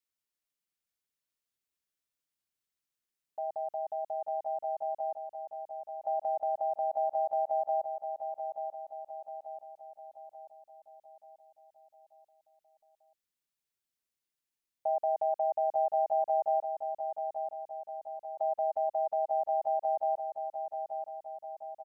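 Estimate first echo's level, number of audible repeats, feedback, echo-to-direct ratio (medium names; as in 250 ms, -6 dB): -7.0 dB, 5, 51%, -5.5 dB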